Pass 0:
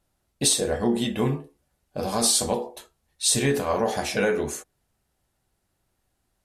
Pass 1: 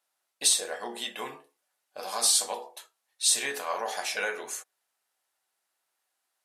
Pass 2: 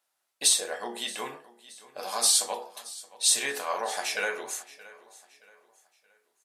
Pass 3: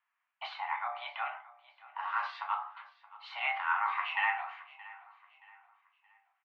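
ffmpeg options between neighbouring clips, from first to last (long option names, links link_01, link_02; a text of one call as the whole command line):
ffmpeg -i in.wav -af "highpass=860,volume=-1.5dB" out.wav
ffmpeg -i in.wav -af "aecho=1:1:624|1248|1872:0.106|0.0403|0.0153,volume=1dB" out.wav
ffmpeg -i in.wav -filter_complex "[0:a]highpass=frequency=300:width_type=q:width=0.5412,highpass=frequency=300:width_type=q:width=1.307,lowpass=frequency=2400:width_type=q:width=0.5176,lowpass=frequency=2400:width_type=q:width=0.7071,lowpass=frequency=2400:width_type=q:width=1.932,afreqshift=360,asplit=2[link_01][link_02];[link_02]adelay=29,volume=-13dB[link_03];[link_01][link_03]amix=inputs=2:normalize=0" out.wav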